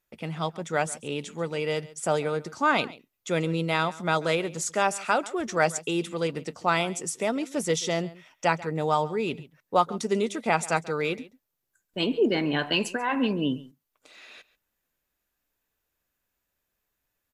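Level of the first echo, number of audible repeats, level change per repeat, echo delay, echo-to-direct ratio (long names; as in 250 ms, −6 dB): −19.5 dB, 1, repeats not evenly spaced, 138 ms, −19.5 dB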